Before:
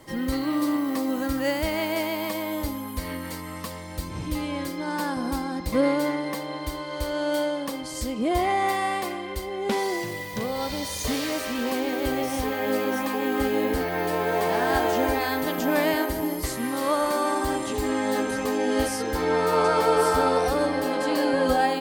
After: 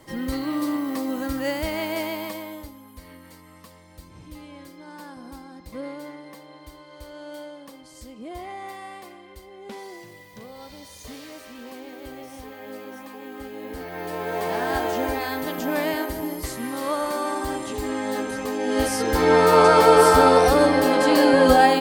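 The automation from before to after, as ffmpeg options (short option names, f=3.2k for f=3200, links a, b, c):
-af "volume=19dB,afade=t=out:st=2.09:d=0.62:silence=0.251189,afade=t=in:st=13.58:d=0.95:silence=0.281838,afade=t=in:st=18.59:d=0.72:silence=0.354813"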